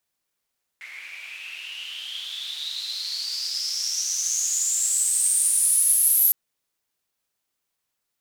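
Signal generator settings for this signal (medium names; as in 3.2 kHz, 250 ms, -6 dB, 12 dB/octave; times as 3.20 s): swept filtered noise white, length 5.51 s bandpass, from 2.1 kHz, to 12 kHz, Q 11, exponential, gain ramp +17 dB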